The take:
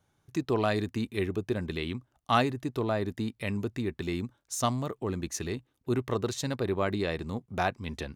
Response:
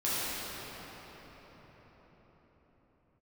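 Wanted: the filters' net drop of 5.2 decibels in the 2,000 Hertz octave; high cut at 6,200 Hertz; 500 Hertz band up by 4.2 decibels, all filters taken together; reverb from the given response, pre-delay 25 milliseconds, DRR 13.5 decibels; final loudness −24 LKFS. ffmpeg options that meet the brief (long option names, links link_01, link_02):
-filter_complex "[0:a]lowpass=6200,equalizer=frequency=500:width_type=o:gain=6,equalizer=frequency=2000:width_type=o:gain=-7.5,asplit=2[link_01][link_02];[1:a]atrim=start_sample=2205,adelay=25[link_03];[link_02][link_03]afir=irnorm=-1:irlink=0,volume=-24dB[link_04];[link_01][link_04]amix=inputs=2:normalize=0,volume=5.5dB"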